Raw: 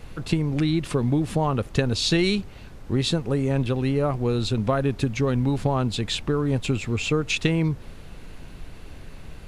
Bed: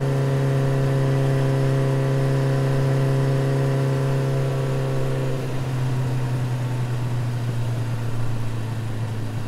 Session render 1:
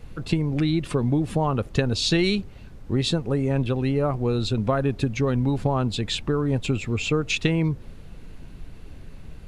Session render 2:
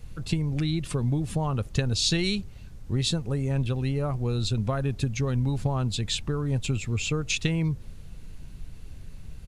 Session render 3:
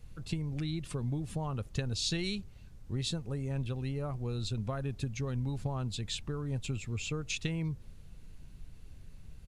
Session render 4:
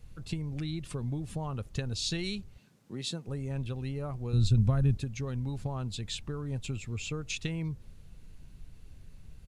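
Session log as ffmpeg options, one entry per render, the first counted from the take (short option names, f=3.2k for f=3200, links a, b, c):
-af "afftdn=nr=6:nf=-42"
-af "firequalizer=gain_entry='entry(110,0);entry(280,-8);entry(6300,3)':delay=0.05:min_phase=1"
-af "volume=-8.5dB"
-filter_complex "[0:a]asettb=1/sr,asplit=3[a][b][c];[a]atrim=end=2.584[d];[b]atrim=start=2.58:end=3.27,asetpts=PTS-STARTPTS,afade=t=in:d=0.004:c=qsin,afade=t=out:st=0.686:d=0.004:c=qsin,highpass=f=160:w=0.5412,highpass=f=160:w=1.3066[e];[c]atrim=start=3.266[f];[d][e]acrossfade=d=0.004:c1=hsin:c2=qsin[g];[g][f]acrossfade=d=0.004:c1=qsin:c2=hsin,asettb=1/sr,asplit=3[h][i][j];[h]atrim=end=4.334[k];[i]atrim=start=4.33:end=4.97,asetpts=PTS-STARTPTS,afade=t=in:d=0.004:c=qsin,afade=t=out:st=0.636:d=0.004:c=qsin,bass=f=250:g=13,treble=f=4k:g=3[l];[j]atrim=start=4.966[m];[k][l]acrossfade=d=0.004:c1=hsin:c2=qsin[n];[n][m]acrossfade=d=0.004:c1=qsin:c2=hsin"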